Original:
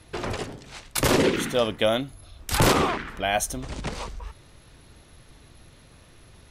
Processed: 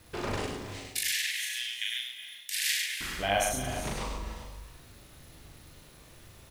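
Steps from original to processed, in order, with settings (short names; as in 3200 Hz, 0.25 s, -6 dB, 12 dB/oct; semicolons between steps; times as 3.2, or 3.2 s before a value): 0.71–3.01 steep high-pass 1700 Hz 96 dB/oct; bit-crush 9-bit; doubler 40 ms -2 dB; echo 0.101 s -4 dB; non-linear reverb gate 0.43 s rising, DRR 10 dB; gain -6 dB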